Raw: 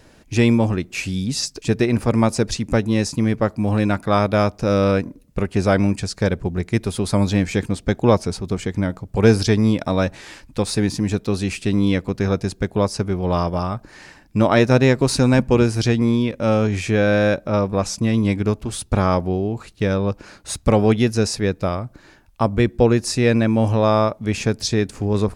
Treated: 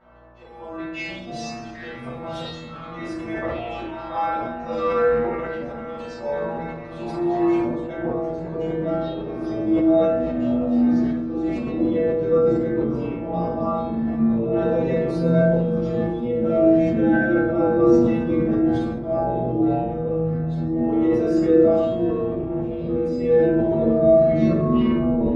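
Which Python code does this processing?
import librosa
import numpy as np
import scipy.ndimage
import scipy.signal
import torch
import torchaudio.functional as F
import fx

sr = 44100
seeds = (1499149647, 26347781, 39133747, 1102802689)

p1 = fx.tape_stop_end(x, sr, length_s=1.11)
p2 = fx.env_lowpass(p1, sr, base_hz=2600.0, full_db=-13.5)
p3 = fx.rider(p2, sr, range_db=4, speed_s=0.5)
p4 = p2 + (p3 * 10.0 ** (2.5 / 20.0))
p5 = fx.stiff_resonator(p4, sr, f0_hz=160.0, decay_s=0.77, stiffness=0.002)
p6 = fx.auto_swell(p5, sr, attack_ms=529.0)
p7 = fx.dmg_buzz(p6, sr, base_hz=60.0, harmonics=27, level_db=-50.0, tilt_db=-7, odd_only=False)
p8 = fx.filter_sweep_bandpass(p7, sr, from_hz=1000.0, to_hz=400.0, start_s=7.53, end_s=8.38, q=1.1)
p9 = p8 + fx.echo_split(p8, sr, split_hz=2200.0, low_ms=517, high_ms=133, feedback_pct=52, wet_db=-16.0, dry=0)
p10 = fx.echo_pitch(p9, sr, ms=405, semitones=-6, count=3, db_per_echo=-3.0)
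p11 = fx.room_shoebox(p10, sr, seeds[0], volume_m3=340.0, walls='furnished', distance_m=7.0)
y = fx.sustainer(p11, sr, db_per_s=35.0)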